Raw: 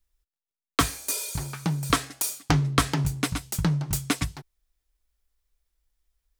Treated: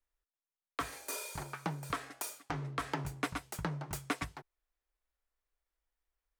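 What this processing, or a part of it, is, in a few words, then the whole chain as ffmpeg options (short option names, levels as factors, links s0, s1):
DJ mixer with the lows and highs turned down: -filter_complex "[0:a]asettb=1/sr,asplit=3[s0][s1][s2];[s0]atrim=end=0.884[s3];[s1]atrim=start=0.88:end=1.43,asetpts=PTS-STARTPTS,afade=t=in:d=0.004:c=qsin,afade=t=out:st=0.546:d=0.004:c=qsin,asplit=2[s4][s5];[s5]adelay=42,volume=0.531[s6];[s4][s6]amix=inputs=2:normalize=0,atrim=end_sample=24255[s7];[s2]atrim=start=1.426[s8];[s3][s7]acrossfade=d=0.004:c1=hsin:c2=qsin[s9];[s9][s8]acrossfade=d=0.004:c1=qsin:c2=hsin,acrossover=split=350 2300:gain=0.224 1 0.251[s10][s11][s12];[s10][s11][s12]amix=inputs=3:normalize=0,alimiter=limit=0.112:level=0:latency=1:release=152,volume=0.794"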